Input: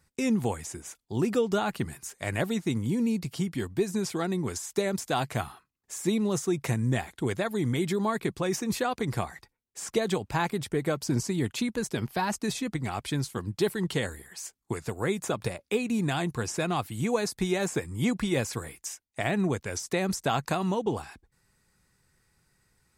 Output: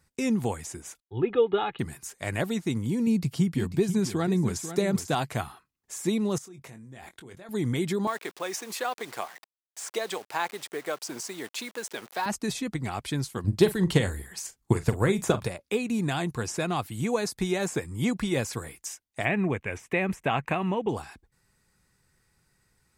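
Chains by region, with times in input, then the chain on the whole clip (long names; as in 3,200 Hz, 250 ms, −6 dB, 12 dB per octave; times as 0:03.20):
0:01.00–0:01.79: Butterworth low-pass 3,800 Hz 96 dB per octave + comb filter 2.4 ms, depth 62% + multiband upward and downward expander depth 70%
0:03.07–0:05.15: parametric band 140 Hz +7 dB 1.7 octaves + single-tap delay 492 ms −11 dB
0:06.38–0:07.49: low-shelf EQ 100 Hz −7 dB + output level in coarse steps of 23 dB + double-tracking delay 22 ms −9 dB
0:08.07–0:12.26: hold until the input has moved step −42 dBFS + high-pass filter 530 Hz
0:13.44–0:15.44: low-shelf EQ 120 Hz +11.5 dB + transient designer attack +7 dB, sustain +3 dB + double-tracking delay 42 ms −13.5 dB
0:19.25–0:20.89: high shelf with overshoot 3,400 Hz −11 dB, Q 3 + notch filter 1,400 Hz, Q 14
whole clip: no processing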